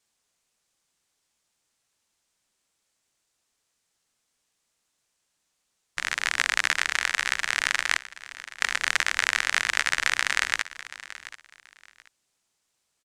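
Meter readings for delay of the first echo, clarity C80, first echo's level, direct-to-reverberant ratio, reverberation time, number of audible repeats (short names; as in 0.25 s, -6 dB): 0.731 s, none, -16.0 dB, none, none, 2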